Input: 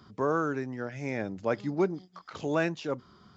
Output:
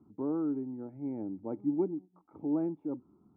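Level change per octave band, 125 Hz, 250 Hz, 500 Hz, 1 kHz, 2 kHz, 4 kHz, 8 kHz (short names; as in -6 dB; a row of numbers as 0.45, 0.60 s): -8.5 dB, +1.0 dB, -7.5 dB, -14.5 dB, under -30 dB, under -35 dB, n/a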